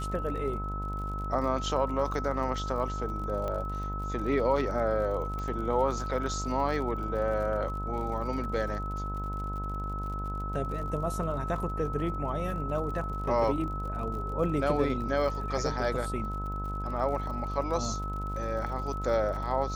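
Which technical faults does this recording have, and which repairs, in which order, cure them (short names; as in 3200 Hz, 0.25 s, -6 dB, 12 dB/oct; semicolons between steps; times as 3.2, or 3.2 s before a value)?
buzz 50 Hz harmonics 24 -35 dBFS
crackle 54/s -39 dBFS
tone 1300 Hz -36 dBFS
3.48 pop -22 dBFS
5.39 pop -25 dBFS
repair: de-click; notch 1300 Hz, Q 30; de-hum 50 Hz, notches 24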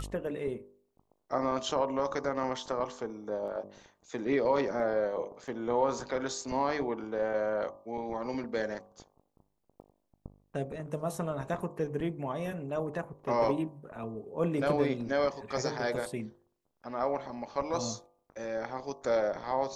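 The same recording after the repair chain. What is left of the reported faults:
3.48 pop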